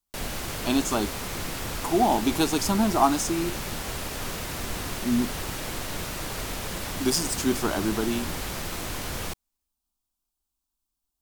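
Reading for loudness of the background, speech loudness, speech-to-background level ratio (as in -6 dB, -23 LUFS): -32.0 LUFS, -26.0 LUFS, 6.0 dB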